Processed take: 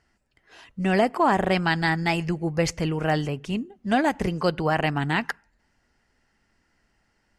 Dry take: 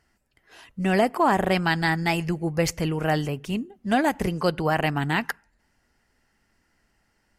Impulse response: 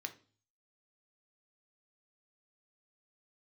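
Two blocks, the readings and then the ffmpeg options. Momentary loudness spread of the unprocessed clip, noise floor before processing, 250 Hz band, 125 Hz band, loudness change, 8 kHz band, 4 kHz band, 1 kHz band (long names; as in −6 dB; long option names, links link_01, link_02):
9 LU, −70 dBFS, 0.0 dB, 0.0 dB, 0.0 dB, −2.5 dB, 0.0 dB, 0.0 dB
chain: -af "lowpass=7800"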